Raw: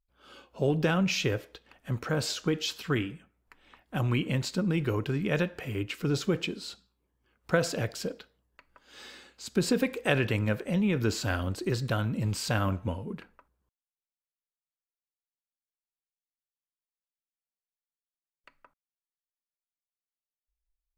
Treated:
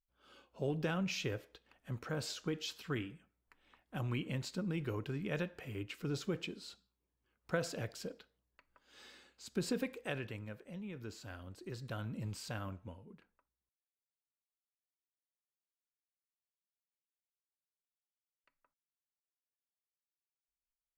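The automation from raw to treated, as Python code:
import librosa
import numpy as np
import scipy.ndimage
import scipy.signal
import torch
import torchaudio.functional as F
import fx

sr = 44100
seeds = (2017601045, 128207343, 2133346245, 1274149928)

y = fx.gain(x, sr, db=fx.line((9.79, -10.0), (10.51, -19.0), (11.44, -19.0), (12.15, -11.0), (13.14, -19.0)))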